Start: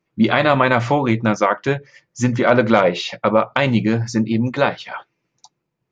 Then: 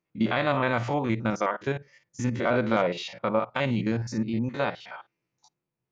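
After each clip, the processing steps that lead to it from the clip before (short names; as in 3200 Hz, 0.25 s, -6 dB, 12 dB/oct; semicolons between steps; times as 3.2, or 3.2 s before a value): stepped spectrum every 50 ms; gain -8.5 dB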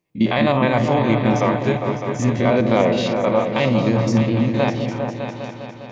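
bell 1400 Hz -13 dB 0.3 oct; on a send: repeats that get brighter 0.202 s, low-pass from 400 Hz, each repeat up 2 oct, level -3 dB; on the sum: gain +7.5 dB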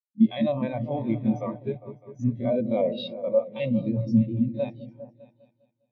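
bell 4300 Hz +12 dB 1.8 oct; spectral expander 2.5:1; gain -9 dB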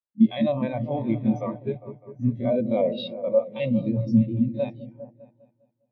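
low-pass opened by the level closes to 1400 Hz, open at -21 dBFS; gain +1.5 dB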